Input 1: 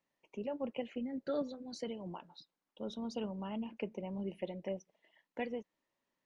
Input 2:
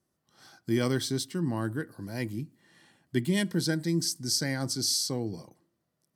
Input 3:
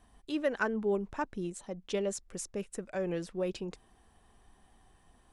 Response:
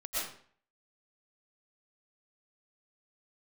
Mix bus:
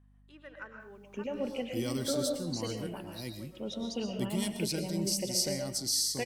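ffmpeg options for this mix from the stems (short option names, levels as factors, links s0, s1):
-filter_complex "[0:a]equalizer=f=1000:w=1.5:g=-5.5,adelay=800,volume=1.12,asplit=2[s0][s1];[s1]volume=0.562[s2];[1:a]equalizer=f=1700:w=3.5:g=-12,adelay=1050,volume=0.355,asplit=2[s3][s4];[s4]volume=0.188[s5];[2:a]acrossover=split=550 2100:gain=0.178 1 0.0708[s6][s7][s8];[s6][s7][s8]amix=inputs=3:normalize=0,equalizer=f=700:w=0.67:g=-12,volume=0.376,asplit=2[s9][s10];[s10]volume=0.562[s11];[3:a]atrim=start_sample=2205[s12];[s2][s5][s11]amix=inputs=3:normalize=0[s13];[s13][s12]afir=irnorm=-1:irlink=0[s14];[s0][s3][s9][s14]amix=inputs=4:normalize=0,highshelf=f=4000:g=9.5,aeval=exprs='val(0)+0.001*(sin(2*PI*50*n/s)+sin(2*PI*2*50*n/s)/2+sin(2*PI*3*50*n/s)/3+sin(2*PI*4*50*n/s)/4+sin(2*PI*5*50*n/s)/5)':c=same"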